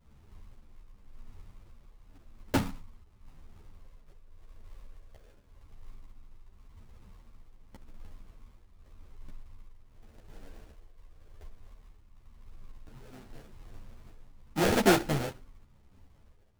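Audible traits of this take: phasing stages 6, 0.16 Hz, lowest notch 260–1200 Hz; aliases and images of a low sample rate 1100 Hz, jitter 20%; tremolo triangle 0.89 Hz, depth 65%; a shimmering, thickened sound

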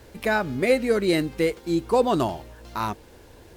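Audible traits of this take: a quantiser's noise floor 10-bit, dither none; Vorbis

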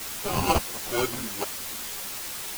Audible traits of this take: aliases and images of a low sample rate 1800 Hz, jitter 0%; random-step tremolo, depth 100%; a quantiser's noise floor 6-bit, dither triangular; a shimmering, thickened sound

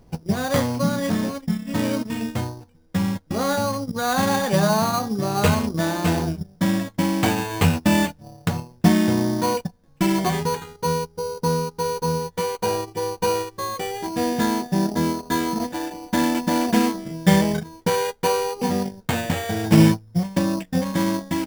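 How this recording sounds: aliases and images of a low sample rate 5300 Hz, jitter 0%

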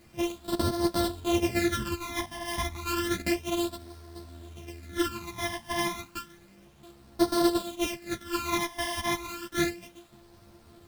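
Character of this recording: a buzz of ramps at a fixed pitch in blocks of 128 samples; phasing stages 12, 0.31 Hz, lowest notch 430–2500 Hz; a quantiser's noise floor 10-bit, dither none; a shimmering, thickened sound

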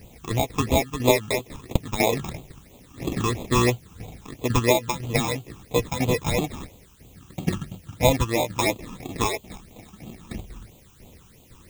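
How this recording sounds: aliases and images of a low sample rate 1500 Hz, jitter 0%; tremolo saw down 2 Hz, depth 70%; a quantiser's noise floor 10-bit, dither triangular; phasing stages 8, 3 Hz, lowest notch 570–1700 Hz

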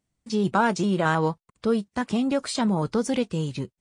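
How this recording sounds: noise floor -88 dBFS; spectral tilt -5.0 dB/oct

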